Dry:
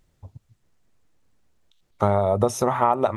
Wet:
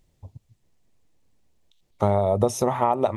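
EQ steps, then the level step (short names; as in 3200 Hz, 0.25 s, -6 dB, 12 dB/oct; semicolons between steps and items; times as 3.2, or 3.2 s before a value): bell 1400 Hz -8 dB 0.68 oct; 0.0 dB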